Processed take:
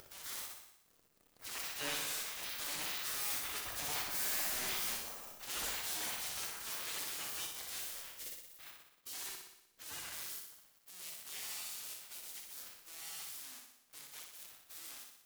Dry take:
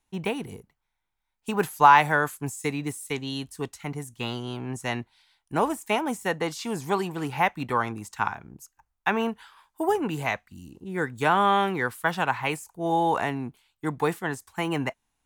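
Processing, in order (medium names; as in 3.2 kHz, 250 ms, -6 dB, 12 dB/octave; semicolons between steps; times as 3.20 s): zero-crossing glitches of -18.5 dBFS; Doppler pass-by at 4.21 s, 7 m/s, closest 3.3 m; in parallel at +1.5 dB: compression 6:1, threshold -40 dBFS, peak gain reduction 16.5 dB; on the sum: treble shelf 11 kHz -7 dB; spectral gate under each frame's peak -25 dB weak; transient shaper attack -4 dB, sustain +5 dB; feedback comb 95 Hz, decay 0.53 s, harmonics all, mix 60%; upward compressor, threshold -60 dBFS; waveshaping leveller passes 5; flutter echo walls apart 10.4 m, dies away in 0.82 s; trim -3.5 dB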